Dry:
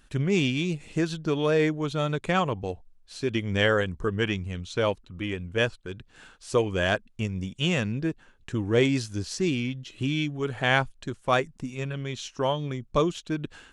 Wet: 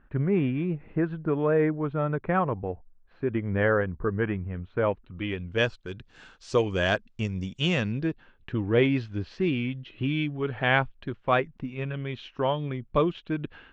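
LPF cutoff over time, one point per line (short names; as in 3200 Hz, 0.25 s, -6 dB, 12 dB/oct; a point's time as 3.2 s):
LPF 24 dB/oct
4.78 s 1800 Hz
5.28 s 3800 Hz
5.72 s 6300 Hz
7.58 s 6300 Hz
8.59 s 3100 Hz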